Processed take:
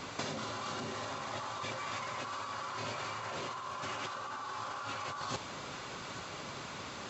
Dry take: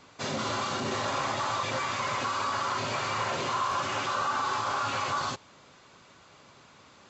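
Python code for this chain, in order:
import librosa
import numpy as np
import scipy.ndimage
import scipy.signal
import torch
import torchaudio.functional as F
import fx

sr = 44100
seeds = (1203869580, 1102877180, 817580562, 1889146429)

p1 = fx.over_compress(x, sr, threshold_db=-41.0, ratio=-1.0)
p2 = p1 + fx.echo_single(p1, sr, ms=837, db=-12.5, dry=0)
y = p2 * librosa.db_to_amplitude(1.0)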